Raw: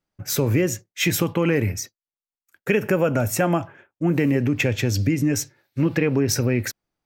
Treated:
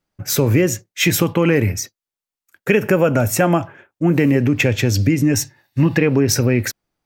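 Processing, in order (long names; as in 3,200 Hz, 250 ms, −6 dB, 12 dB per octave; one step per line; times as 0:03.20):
0:05.34–0:05.98: comb filter 1.1 ms, depth 50%
level +5 dB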